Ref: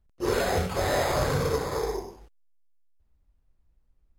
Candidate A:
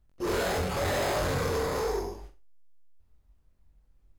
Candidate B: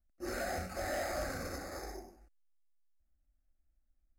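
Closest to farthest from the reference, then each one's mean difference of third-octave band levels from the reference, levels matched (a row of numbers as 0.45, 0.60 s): A, B; 3.0, 4.0 dB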